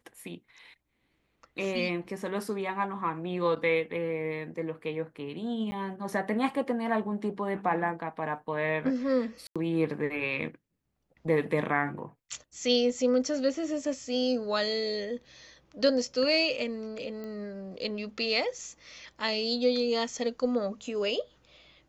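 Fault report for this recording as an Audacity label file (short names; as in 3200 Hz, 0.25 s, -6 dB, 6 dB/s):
5.710000	5.720000	gap 10 ms
9.470000	9.560000	gap 86 ms
17.240000	17.240000	pop -28 dBFS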